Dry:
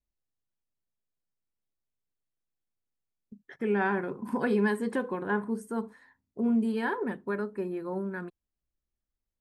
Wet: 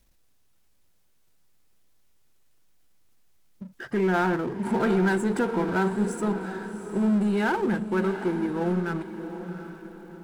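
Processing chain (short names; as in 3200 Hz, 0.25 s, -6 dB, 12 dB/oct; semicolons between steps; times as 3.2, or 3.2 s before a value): in parallel at +1 dB: level quantiser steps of 11 dB; on the sum: speed mistake 48 kHz file played as 44.1 kHz; power-law curve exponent 0.7; diffused feedback echo 0.729 s, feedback 41%, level -10 dB; gain -2 dB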